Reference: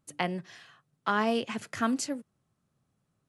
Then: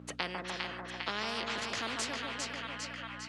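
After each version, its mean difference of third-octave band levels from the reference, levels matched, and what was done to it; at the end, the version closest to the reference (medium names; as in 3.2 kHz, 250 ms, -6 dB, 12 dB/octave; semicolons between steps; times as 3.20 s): 12.5 dB: on a send: two-band feedback delay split 1.2 kHz, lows 148 ms, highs 402 ms, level -7 dB; on the sum: hum 60 Hz, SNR 17 dB; band-pass 200–2900 Hz; spectrum-flattening compressor 4:1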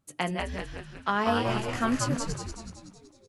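8.5 dB: chunks repeated in reverse 155 ms, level -7 dB; wow and flutter 21 cents; doubling 16 ms -11 dB; on a send: frequency-shifting echo 188 ms, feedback 54%, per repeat -110 Hz, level -4 dB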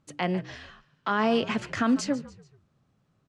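4.5 dB: treble shelf 5.5 kHz +7.5 dB; on a send: frequency-shifting echo 144 ms, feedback 46%, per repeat -52 Hz, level -20 dB; on the sum: peak limiter -21 dBFS, peak gain reduction 9.5 dB; distance through air 140 m; trim +7 dB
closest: third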